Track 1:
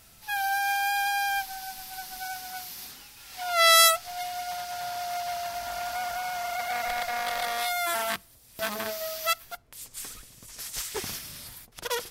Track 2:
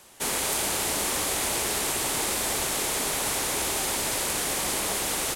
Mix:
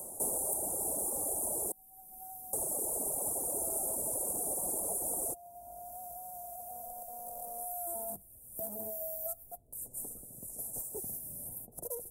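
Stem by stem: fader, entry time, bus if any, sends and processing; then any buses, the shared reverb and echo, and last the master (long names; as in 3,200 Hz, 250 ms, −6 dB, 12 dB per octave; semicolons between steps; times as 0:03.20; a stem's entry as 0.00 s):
0:07.19 −19.5 dB → 0:07.96 −9.5 dB, 0.00 s, no send, high-shelf EQ 9,900 Hz +5 dB; notch filter 1,100 Hz, Q 6.9
+1.5 dB, 0.00 s, muted 0:01.72–0:02.53, no send, reverb reduction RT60 1.8 s; low-shelf EQ 420 Hz −11 dB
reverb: not used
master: Chebyshev band-stop filter 670–9,200 Hz, order 3; multiband upward and downward compressor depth 70%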